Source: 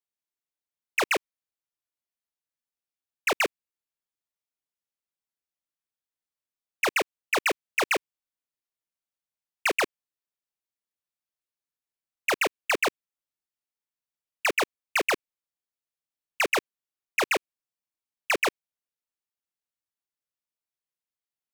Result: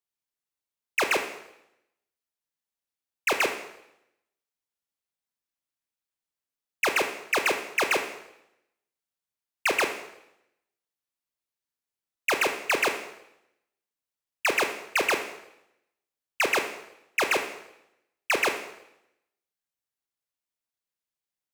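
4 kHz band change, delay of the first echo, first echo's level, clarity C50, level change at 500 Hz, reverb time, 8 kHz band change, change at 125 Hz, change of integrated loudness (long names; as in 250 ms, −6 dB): +1.0 dB, no echo audible, no echo audible, 8.5 dB, +0.5 dB, 0.85 s, +1.0 dB, +0.5 dB, +0.5 dB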